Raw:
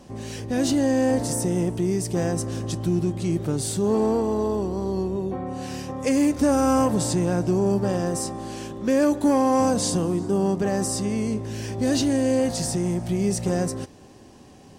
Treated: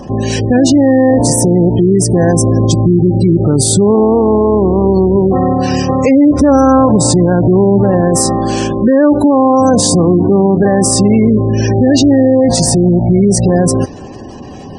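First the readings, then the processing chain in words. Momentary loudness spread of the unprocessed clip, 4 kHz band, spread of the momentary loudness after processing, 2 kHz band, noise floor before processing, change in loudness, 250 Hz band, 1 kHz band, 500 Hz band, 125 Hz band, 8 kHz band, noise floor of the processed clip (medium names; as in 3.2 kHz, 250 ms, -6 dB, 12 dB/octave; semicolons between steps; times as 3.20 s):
9 LU, +13.0 dB, 5 LU, +10.5 dB, -48 dBFS, +13.5 dB, +13.5 dB, +13.0 dB, +13.5 dB, +15.5 dB, +14.0 dB, -28 dBFS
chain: spectral gate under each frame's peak -25 dB strong; loudness maximiser +20.5 dB; trim -1 dB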